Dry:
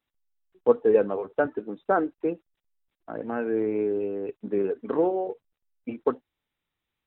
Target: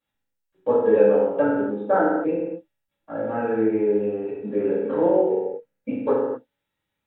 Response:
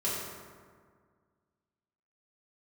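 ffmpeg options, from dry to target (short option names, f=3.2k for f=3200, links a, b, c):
-filter_complex "[0:a]asettb=1/sr,asplit=3[a][b][c];[a]atrim=end=5.284[d];[b]atrim=start=5.28:end=5.89,asetpts=PTS-STARTPTS,afade=t=in:d=0.004:c=qsin,afade=t=out:st=0.606:d=0.004:c=qsin,equalizer=f=125:t=o:w=1:g=5,equalizer=f=250:t=o:w=1:g=6,equalizer=f=500:t=o:w=1:g=9,equalizer=f=2k:t=o:w=1:g=6[e];[c]atrim=start=5.886[f];[d][e]acrossfade=d=0.004:c1=hsin:c2=qsin[g];[g][f]acrossfade=d=0.004:c1=qsin:c2=hsin[h];[1:a]atrim=start_sample=2205,afade=t=out:st=0.43:d=0.01,atrim=end_sample=19404,asetrate=61740,aresample=44100[i];[h][i]afir=irnorm=-1:irlink=0"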